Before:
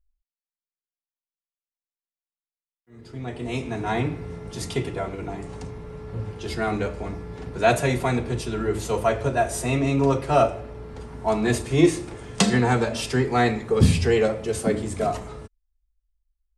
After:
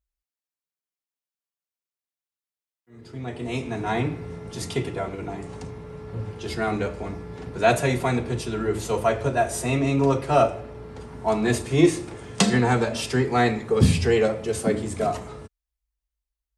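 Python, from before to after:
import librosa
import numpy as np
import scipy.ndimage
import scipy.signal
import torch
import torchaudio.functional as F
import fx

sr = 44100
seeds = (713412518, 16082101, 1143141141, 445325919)

y = scipy.signal.sosfilt(scipy.signal.butter(2, 68.0, 'highpass', fs=sr, output='sos'), x)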